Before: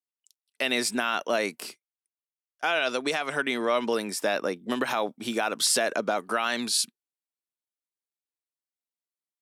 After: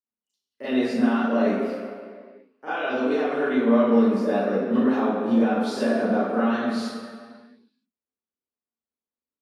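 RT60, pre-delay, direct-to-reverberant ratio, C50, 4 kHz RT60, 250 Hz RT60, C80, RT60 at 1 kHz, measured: 2.1 s, 28 ms, -13.5 dB, -4.0 dB, 1.5 s, 1.9 s, -0.5 dB, 2.0 s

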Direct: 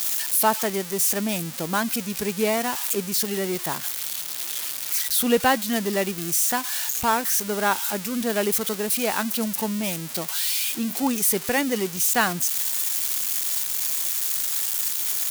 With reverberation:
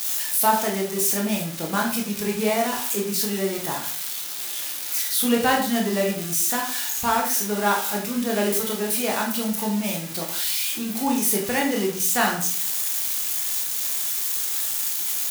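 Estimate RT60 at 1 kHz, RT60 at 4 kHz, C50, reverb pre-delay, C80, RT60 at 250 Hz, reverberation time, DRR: 0.50 s, 0.40 s, 6.0 dB, 15 ms, 10.5 dB, 0.60 s, 0.50 s, -1.0 dB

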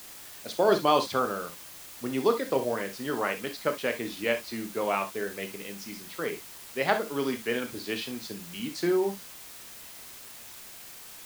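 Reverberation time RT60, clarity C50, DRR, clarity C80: not exponential, 11.5 dB, 6.0 dB, 60.0 dB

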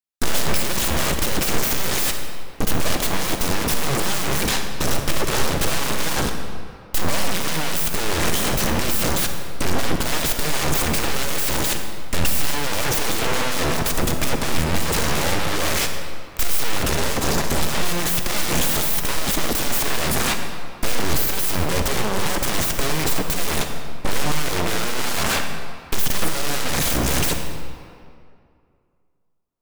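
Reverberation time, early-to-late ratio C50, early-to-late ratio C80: 2.3 s, 5.0 dB, 6.5 dB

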